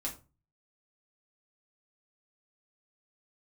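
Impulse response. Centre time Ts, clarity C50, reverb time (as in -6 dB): 15 ms, 11.5 dB, 0.30 s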